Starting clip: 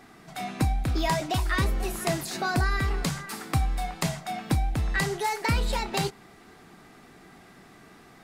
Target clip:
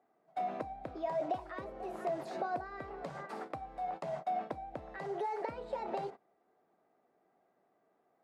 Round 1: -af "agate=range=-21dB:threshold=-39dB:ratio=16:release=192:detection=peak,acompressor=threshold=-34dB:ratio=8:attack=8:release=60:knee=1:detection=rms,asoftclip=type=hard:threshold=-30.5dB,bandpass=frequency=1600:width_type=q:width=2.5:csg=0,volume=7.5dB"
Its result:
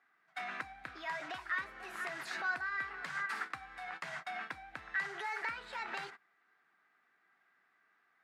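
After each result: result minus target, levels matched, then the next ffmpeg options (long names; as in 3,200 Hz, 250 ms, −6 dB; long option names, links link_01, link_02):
2,000 Hz band +14.0 dB; hard clipping: distortion +18 dB
-af "agate=range=-21dB:threshold=-39dB:ratio=16:release=192:detection=peak,acompressor=threshold=-34dB:ratio=8:attack=8:release=60:knee=1:detection=rms,asoftclip=type=hard:threshold=-30.5dB,bandpass=frequency=600:width_type=q:width=2.5:csg=0,volume=7.5dB"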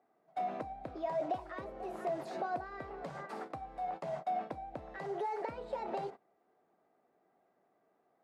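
hard clipping: distortion +18 dB
-af "agate=range=-21dB:threshold=-39dB:ratio=16:release=192:detection=peak,acompressor=threshold=-34dB:ratio=8:attack=8:release=60:knee=1:detection=rms,asoftclip=type=hard:threshold=-23.5dB,bandpass=frequency=600:width_type=q:width=2.5:csg=0,volume=7.5dB"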